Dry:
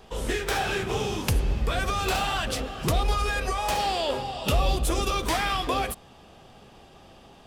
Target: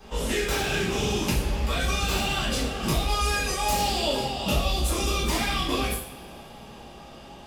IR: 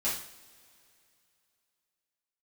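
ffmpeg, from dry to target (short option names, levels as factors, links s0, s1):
-filter_complex "[0:a]asettb=1/sr,asplit=3[s0][s1][s2];[s0]atrim=end=3.214[s3];[s1]atrim=start=3.21:end=4.24,asetpts=PTS-STARTPTS,afade=t=in:d=0.004:c=qsin,afade=t=out:st=1.026:d=0.004:c=qsin,highshelf=f=4700:g=8[s4];[s2]atrim=start=4.236[s5];[s3][s4]acrossfade=d=0.004:c1=hsin:c2=qsin[s6];[s6][s5]acrossfade=d=0.004:c1=qsin:c2=hsin,acrossover=split=440|2100[s7][s8][s9];[s7]acompressor=threshold=0.0316:ratio=4[s10];[s8]acompressor=threshold=0.01:ratio=4[s11];[s9]acompressor=threshold=0.02:ratio=4[s12];[s10][s11][s12]amix=inputs=3:normalize=0[s13];[1:a]atrim=start_sample=2205[s14];[s13][s14]afir=irnorm=-1:irlink=0"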